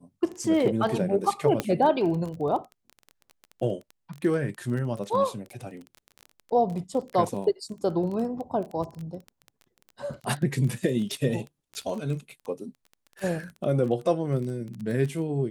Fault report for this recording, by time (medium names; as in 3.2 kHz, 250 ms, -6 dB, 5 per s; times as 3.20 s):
crackle 17 per s -32 dBFS
1.60 s: pop -11 dBFS